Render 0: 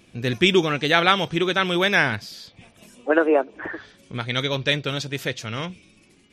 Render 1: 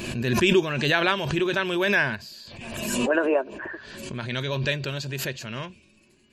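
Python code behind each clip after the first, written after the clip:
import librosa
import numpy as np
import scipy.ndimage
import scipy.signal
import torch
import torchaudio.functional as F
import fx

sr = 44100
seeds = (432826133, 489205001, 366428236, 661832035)

y = fx.ripple_eq(x, sr, per_octave=1.4, db=8)
y = fx.pre_swell(y, sr, db_per_s=39.0)
y = y * librosa.db_to_amplitude(-5.5)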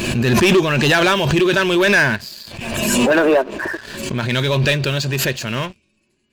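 y = fx.leveller(x, sr, passes=3)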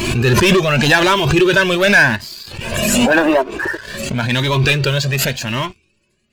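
y = fx.comb_cascade(x, sr, direction='rising', hz=0.89)
y = y * librosa.db_to_amplitude(7.0)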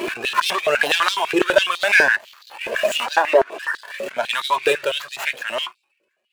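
y = scipy.signal.medfilt(x, 9)
y = fx.filter_held_highpass(y, sr, hz=12.0, low_hz=450.0, high_hz=4100.0)
y = y * librosa.db_to_amplitude(-5.5)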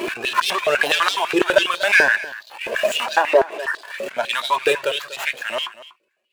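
y = x + 10.0 ** (-17.0 / 20.0) * np.pad(x, (int(241 * sr / 1000.0), 0))[:len(x)]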